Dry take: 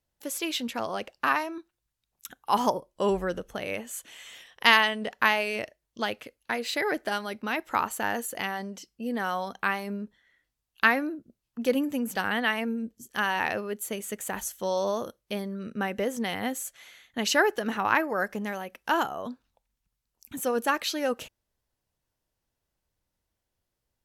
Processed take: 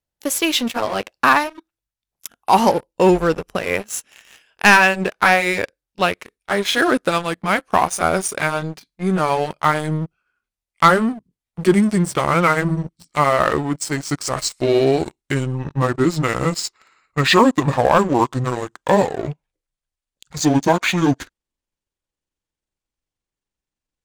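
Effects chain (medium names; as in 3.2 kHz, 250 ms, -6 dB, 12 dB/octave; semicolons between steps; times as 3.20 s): pitch bend over the whole clip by -11 st starting unshifted; waveshaping leveller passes 3; trim +1.5 dB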